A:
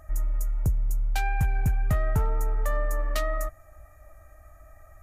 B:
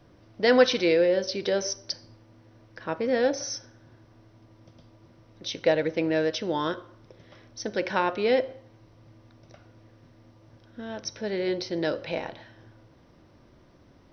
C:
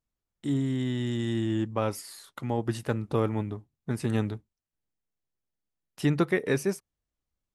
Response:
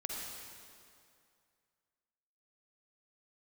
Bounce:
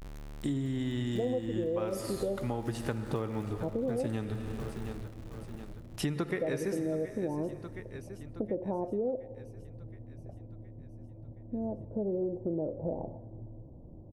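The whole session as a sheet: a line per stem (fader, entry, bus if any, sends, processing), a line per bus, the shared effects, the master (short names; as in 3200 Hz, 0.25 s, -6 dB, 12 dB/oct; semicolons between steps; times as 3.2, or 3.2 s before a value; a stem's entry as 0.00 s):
-10.0 dB, 0.00 s, no send, echo send -5 dB, compressor 2:1, threshold -36 dBFS, peak gain reduction 9 dB; Schmitt trigger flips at -48.5 dBFS
-1.5 dB, 0.75 s, send -24 dB, no echo send, steep low-pass 810 Hz 36 dB/oct; tilt -3 dB/oct
+1.5 dB, 0.00 s, send -6.5 dB, echo send -16 dB, dry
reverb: on, RT60 2.4 s, pre-delay 42 ms
echo: feedback echo 0.72 s, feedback 53%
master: compressor 6:1, threshold -30 dBFS, peak gain reduction 17.5 dB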